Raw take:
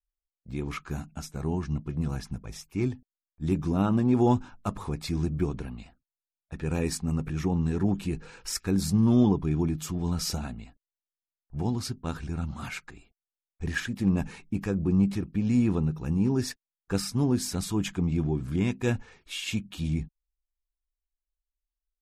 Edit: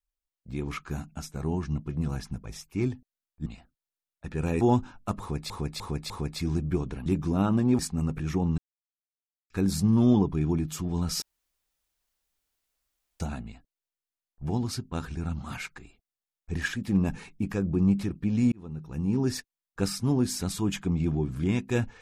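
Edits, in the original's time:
0:03.46–0:04.19: swap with 0:05.74–0:06.89
0:04.78–0:05.08: repeat, 4 plays
0:07.68–0:08.60: silence
0:10.32: splice in room tone 1.98 s
0:15.64–0:16.36: fade in linear

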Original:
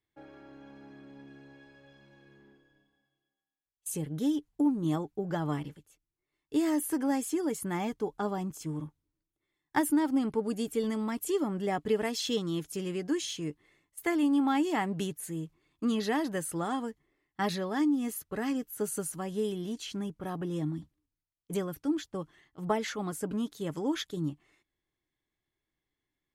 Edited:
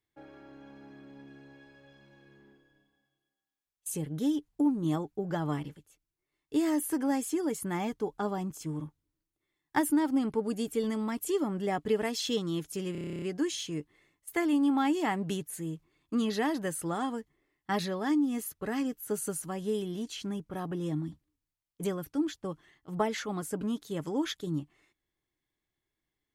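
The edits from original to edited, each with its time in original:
0:12.92: stutter 0.03 s, 11 plays

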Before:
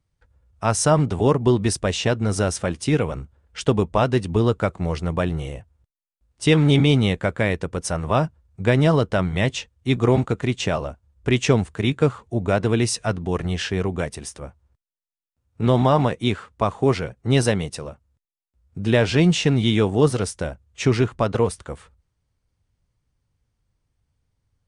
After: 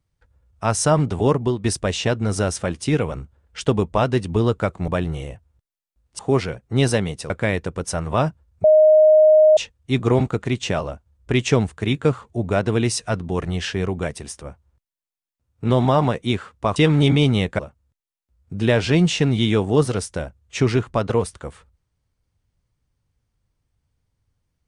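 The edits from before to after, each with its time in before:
0:01.37–0:01.64: fade out, to −13 dB
0:04.88–0:05.13: remove
0:06.44–0:07.27: swap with 0:16.73–0:17.84
0:08.61–0:09.54: beep over 620 Hz −8.5 dBFS

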